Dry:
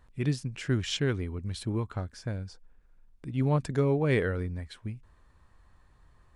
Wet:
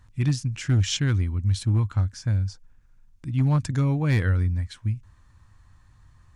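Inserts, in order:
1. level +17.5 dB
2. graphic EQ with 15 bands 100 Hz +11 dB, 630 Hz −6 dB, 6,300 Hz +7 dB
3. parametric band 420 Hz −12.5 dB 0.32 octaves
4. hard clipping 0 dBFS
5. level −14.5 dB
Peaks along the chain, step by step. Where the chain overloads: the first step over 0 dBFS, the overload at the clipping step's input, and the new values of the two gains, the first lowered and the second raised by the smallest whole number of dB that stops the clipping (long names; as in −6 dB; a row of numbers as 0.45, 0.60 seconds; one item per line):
+3.0, +5.5, +5.0, 0.0, −14.5 dBFS
step 1, 5.0 dB
step 1 +12.5 dB, step 5 −9.5 dB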